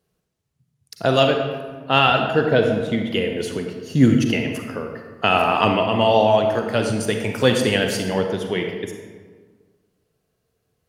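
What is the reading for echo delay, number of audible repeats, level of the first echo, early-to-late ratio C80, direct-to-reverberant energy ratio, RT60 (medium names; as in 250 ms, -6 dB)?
no echo, no echo, no echo, 6.0 dB, 3.5 dB, 1.5 s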